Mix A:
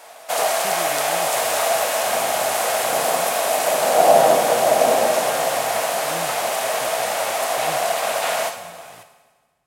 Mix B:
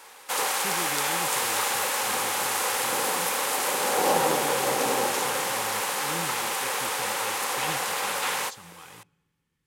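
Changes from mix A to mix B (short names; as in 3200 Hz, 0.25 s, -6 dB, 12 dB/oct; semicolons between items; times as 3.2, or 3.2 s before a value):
background: send off; master: add Butterworth band-stop 660 Hz, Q 2.7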